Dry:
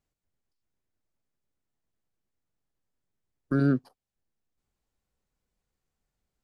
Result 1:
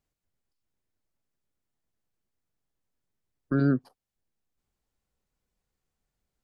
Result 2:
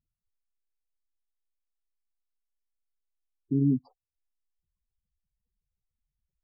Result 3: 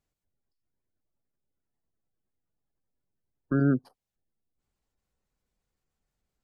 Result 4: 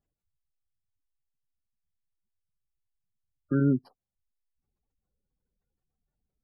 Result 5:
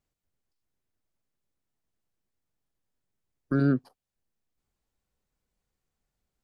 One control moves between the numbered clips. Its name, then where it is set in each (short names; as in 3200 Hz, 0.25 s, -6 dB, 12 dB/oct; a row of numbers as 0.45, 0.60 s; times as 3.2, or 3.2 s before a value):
spectral gate, under each frame's peak: -50, -10, -35, -20, -60 dB